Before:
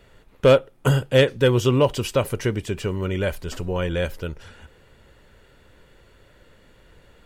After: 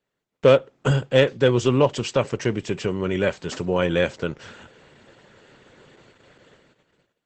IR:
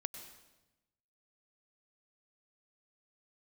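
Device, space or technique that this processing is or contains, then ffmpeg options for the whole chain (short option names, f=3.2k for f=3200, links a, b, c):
video call: -af "highpass=f=120:w=0.5412,highpass=f=120:w=1.3066,dynaudnorm=f=500:g=5:m=6dB,agate=range=-24dB:threshold=-51dB:ratio=16:detection=peak" -ar 48000 -c:a libopus -b:a 12k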